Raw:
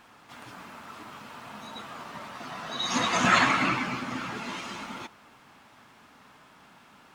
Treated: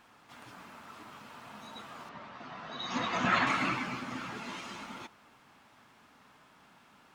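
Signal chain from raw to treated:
0:02.09–0:03.47: high-frequency loss of the air 140 metres
level −5.5 dB

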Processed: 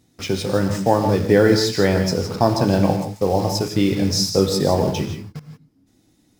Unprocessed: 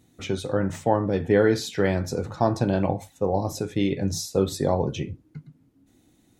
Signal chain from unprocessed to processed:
in parallel at −3 dB: bit reduction 6 bits
on the sum: parametric band 5,100 Hz +11.5 dB 0.26 octaves
reverb whose tail is shaped and stops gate 190 ms rising, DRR 6.5 dB

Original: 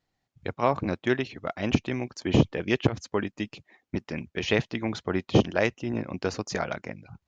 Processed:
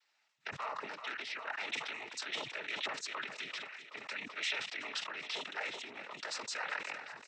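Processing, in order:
cochlear-implant simulation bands 12
high-shelf EQ 6,200 Hz +8.5 dB
on a send: repeating echo 381 ms, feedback 42%, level −21.5 dB
on the sum: brickwall limiter −22 dBFS, peak gain reduction 13.5 dB
downward compressor 6 to 1, threshold −38 dBFS, peak gain reduction 11 dB
transient designer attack −5 dB, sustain +1 dB
high-pass filter 1,200 Hz 12 dB per octave
high-frequency loss of the air 100 metres
level that may fall only so fast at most 62 dB per second
level +9 dB

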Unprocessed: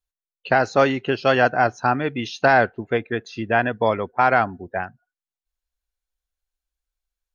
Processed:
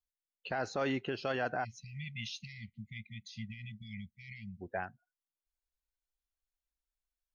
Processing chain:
brickwall limiter −15.5 dBFS, peak gain reduction 11.5 dB
0:01.64–0:04.61: time-frequency box erased 230–1,900 Hz
0:02.48–0:04.37: notch filter 2,700 Hz, Q 8.3
level −9 dB

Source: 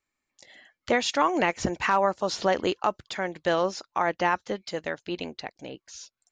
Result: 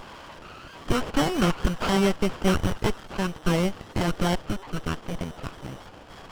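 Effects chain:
linear delta modulator 32 kbit/s, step −36.5 dBFS
voice inversion scrambler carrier 3,300 Hz
0:01.09–0:03.13: dynamic equaliser 1,400 Hz, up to +5 dB, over −43 dBFS, Q 1.9
windowed peak hold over 17 samples
level +5 dB

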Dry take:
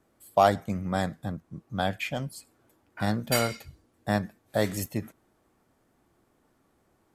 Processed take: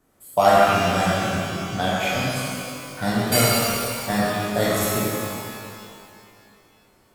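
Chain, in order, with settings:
high-shelf EQ 6,900 Hz +7 dB
reverb with rising layers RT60 2.3 s, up +12 semitones, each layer −8 dB, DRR −6.5 dB

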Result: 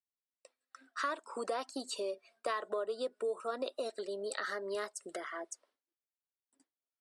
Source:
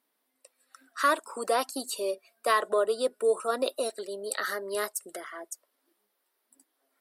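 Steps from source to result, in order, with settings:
downward expander −56 dBFS
low-pass filter 8,300 Hz 24 dB per octave
high-shelf EQ 6,500 Hz −6 dB
downward compressor 3 to 1, threshold −36 dBFS, peak gain reduction 12.5 dB

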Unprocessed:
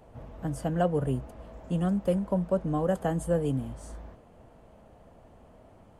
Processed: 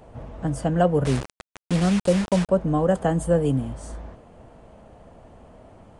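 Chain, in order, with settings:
0:01.05–0:02.49: bit-depth reduction 6 bits, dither none
downsampling to 22,050 Hz
level +6.5 dB

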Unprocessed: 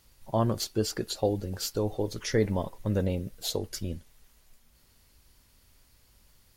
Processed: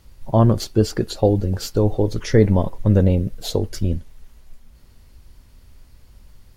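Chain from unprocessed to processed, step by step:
spectral tilt −2 dB per octave
level +7.5 dB

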